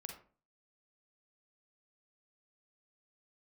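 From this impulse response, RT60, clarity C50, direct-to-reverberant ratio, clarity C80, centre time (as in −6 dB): 0.40 s, 5.5 dB, 3.0 dB, 11.0 dB, 23 ms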